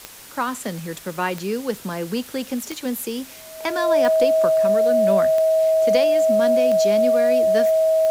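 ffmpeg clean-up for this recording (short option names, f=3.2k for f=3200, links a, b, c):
-af "adeclick=t=4,bandreject=f=640:w=30,afwtdn=0.0089"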